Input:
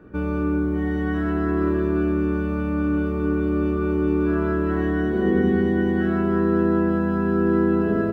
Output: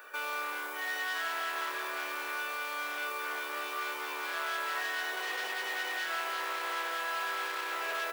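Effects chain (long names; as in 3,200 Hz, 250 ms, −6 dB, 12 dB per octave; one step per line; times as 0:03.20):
spectral tilt +4 dB per octave
in parallel at +1 dB: wave folding −27 dBFS
on the sum: high-shelf EQ 2,900 Hz +9 dB
brickwall limiter −23.5 dBFS, peak gain reduction 11 dB
high-pass filter 600 Hz 24 dB per octave
level −2 dB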